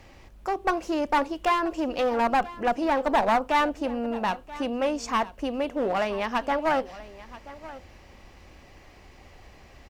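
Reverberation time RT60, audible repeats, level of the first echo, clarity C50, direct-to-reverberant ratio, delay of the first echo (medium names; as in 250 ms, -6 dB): no reverb, 1, -17.5 dB, no reverb, no reverb, 981 ms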